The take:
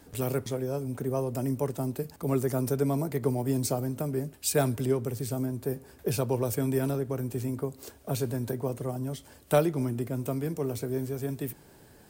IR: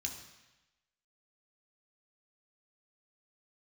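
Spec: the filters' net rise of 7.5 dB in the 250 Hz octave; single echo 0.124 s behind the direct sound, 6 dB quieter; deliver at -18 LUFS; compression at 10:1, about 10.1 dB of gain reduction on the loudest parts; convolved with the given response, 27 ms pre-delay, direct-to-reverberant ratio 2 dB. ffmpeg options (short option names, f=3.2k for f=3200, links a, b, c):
-filter_complex "[0:a]equalizer=f=250:t=o:g=8.5,acompressor=threshold=-27dB:ratio=10,aecho=1:1:124:0.501,asplit=2[a][b];[1:a]atrim=start_sample=2205,adelay=27[c];[b][c]afir=irnorm=-1:irlink=0,volume=-1.5dB[d];[a][d]amix=inputs=2:normalize=0,volume=10.5dB"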